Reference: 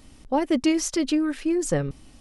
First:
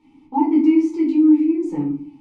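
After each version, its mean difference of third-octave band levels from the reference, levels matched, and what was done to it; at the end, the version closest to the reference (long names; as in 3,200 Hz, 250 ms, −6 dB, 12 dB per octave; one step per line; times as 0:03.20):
9.5 dB: formant filter u
tuned comb filter 98 Hz, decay 0.17 s, harmonics all, mix 70%
rectangular room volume 330 cubic metres, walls furnished, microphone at 4.4 metres
dynamic equaliser 3,100 Hz, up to −7 dB, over −59 dBFS, Q 1.2
level +8.5 dB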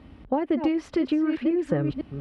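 6.0 dB: delay that plays each chunk backwards 503 ms, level −9 dB
high-pass filter 44 Hz 24 dB per octave
downward compressor, threshold −25 dBFS, peak gain reduction 9 dB
high-frequency loss of the air 450 metres
level +5.5 dB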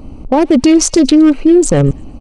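3.5 dB: adaptive Wiener filter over 25 samples
downsampling to 22,050 Hz
on a send: delay with a high-pass on its return 115 ms, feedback 35%, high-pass 2,200 Hz, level −24 dB
on the sum: boost into a limiter +21 dB
level −1 dB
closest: third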